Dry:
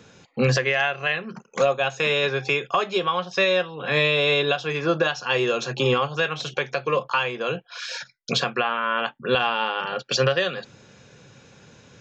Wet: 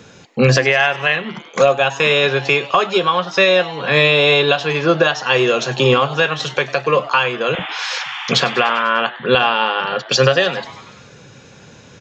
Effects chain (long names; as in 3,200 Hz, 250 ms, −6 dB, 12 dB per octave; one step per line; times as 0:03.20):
0:07.53–0:08.83: sound drawn into the spectrogram noise 730–3,600 Hz −35 dBFS
0:07.55–0:08.16: all-pass dispersion lows, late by 44 ms, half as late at 410 Hz
echo with shifted repeats 99 ms, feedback 65%, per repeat +140 Hz, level −18.5 dB
level +7.5 dB